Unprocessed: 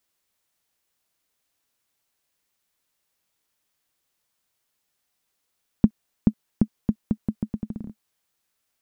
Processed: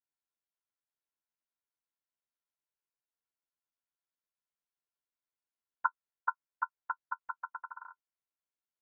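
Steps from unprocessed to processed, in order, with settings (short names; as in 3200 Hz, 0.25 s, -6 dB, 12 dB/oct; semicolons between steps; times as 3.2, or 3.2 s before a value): vocoder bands 8, saw 89.2 Hz; ring modulator 1200 Hz; gain -8.5 dB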